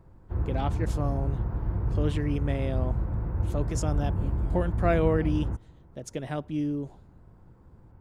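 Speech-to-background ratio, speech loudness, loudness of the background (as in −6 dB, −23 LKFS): −1.0 dB, −31.5 LKFS, −30.5 LKFS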